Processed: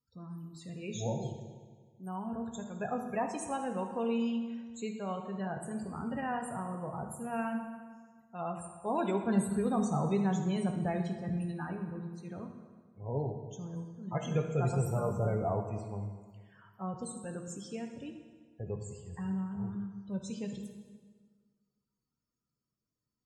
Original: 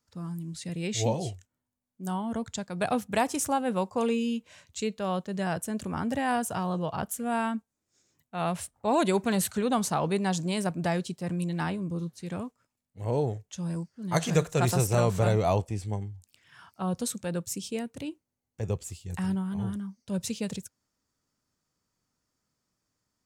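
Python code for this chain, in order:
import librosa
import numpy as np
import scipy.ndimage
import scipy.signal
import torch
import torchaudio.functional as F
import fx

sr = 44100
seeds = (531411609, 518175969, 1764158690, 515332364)

y = fx.low_shelf(x, sr, hz=200.0, db=10.5, at=(9.27, 11.34))
y = fx.spec_topn(y, sr, count=32)
y = fx.rev_fdn(y, sr, rt60_s=1.6, lf_ratio=1.05, hf_ratio=0.8, size_ms=43.0, drr_db=3.0)
y = F.gain(torch.from_numpy(y), -8.5).numpy()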